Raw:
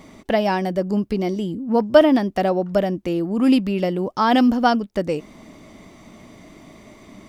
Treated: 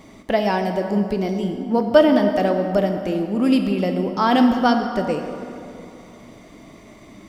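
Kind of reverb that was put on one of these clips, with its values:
dense smooth reverb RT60 2.6 s, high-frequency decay 0.6×, DRR 4.5 dB
level −1 dB

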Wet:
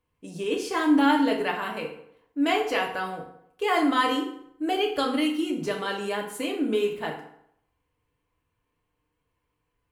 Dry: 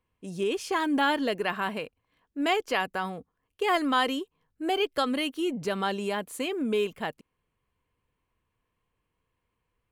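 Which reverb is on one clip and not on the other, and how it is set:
feedback delay network reverb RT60 0.72 s, low-frequency decay 0.9×, high-frequency decay 0.7×, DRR −0.5 dB
level −1.5 dB

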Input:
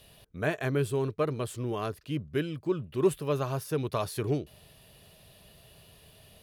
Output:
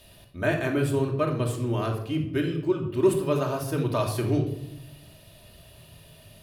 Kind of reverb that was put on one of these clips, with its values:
rectangular room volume 2,000 cubic metres, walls furnished, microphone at 2.7 metres
level +1.5 dB

